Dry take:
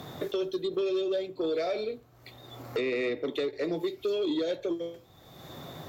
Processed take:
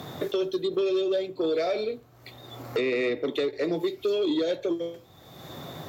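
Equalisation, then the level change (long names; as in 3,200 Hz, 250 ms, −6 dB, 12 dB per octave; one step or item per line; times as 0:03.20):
high-pass filter 61 Hz
+3.5 dB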